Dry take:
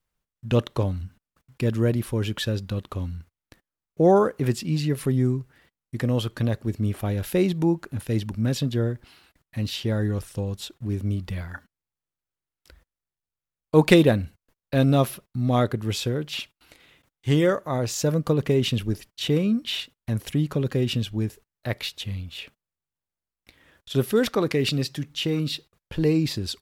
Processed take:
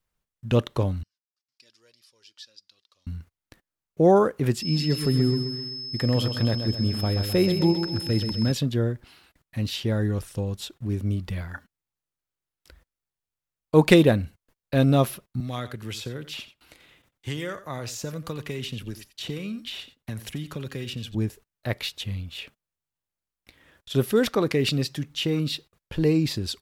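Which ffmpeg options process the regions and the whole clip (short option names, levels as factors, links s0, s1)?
-filter_complex "[0:a]asettb=1/sr,asplit=3[s0][s1][s2];[s0]atrim=end=1.034[s3];[s1]atrim=start=1.03:end=3.07,asetpts=PTS-STARTPTS,afade=t=in:d=0.004:c=qsin,afade=t=out:st=2.036:d=0.004:c=qsin,flanger=delay=1.6:depth=2.1:regen=40:speed=1:shape=sinusoidal,bandpass=f=5000:t=q:w=4.8,asoftclip=type=hard:threshold=0.0251[s4];[s2]atrim=start=3.066[s5];[s3][s4]acrossfade=d=0.004:c1=hsin:c2=qsin[s6];[s6][s5]acrossfade=d=0.004:c1=qsin:c2=hsin,asettb=1/sr,asplit=3[s7][s8][s9];[s7]atrim=end=4.624[s10];[s8]atrim=start=4.62:end=8.52,asetpts=PTS-STARTPTS,afade=t=in:d=0.004:c=qsin,afade=t=out:st=3.896:d=0.004:c=qsin,aeval=exprs='val(0)+0.0316*sin(2*PI*5200*n/s)':c=same,aecho=1:1:129|258|387|516|645|774:0.398|0.203|0.104|0.0528|0.0269|0.0137,atrim=end_sample=171990[s11];[s9]atrim=start=8.516[s12];[s10][s11]acrossfade=d=0.004:c1=hsin:c2=qsin[s13];[s13][s12]acrossfade=d=0.004:c1=qsin:c2=hsin,asettb=1/sr,asplit=3[s14][s15][s16];[s14]atrim=end=15.404[s17];[s15]atrim=start=15.4:end=21.15,asetpts=PTS-STARTPTS,afade=t=in:d=0.004:c=qsin,afade=t=out:st=5.746:d=0.004:c=qsin,acrossover=split=100|1300[s18][s19][s20];[s18]acompressor=threshold=0.00631:ratio=4[s21];[s19]acompressor=threshold=0.02:ratio=4[s22];[s20]acompressor=threshold=0.0178:ratio=4[s23];[s21][s22][s23]amix=inputs=3:normalize=0,aecho=1:1:89:0.188,atrim=end_sample=253575[s24];[s16]atrim=start=21.146[s25];[s17][s24]acrossfade=d=0.004:c1=hsin:c2=qsin[s26];[s26][s25]acrossfade=d=0.004:c1=qsin:c2=hsin"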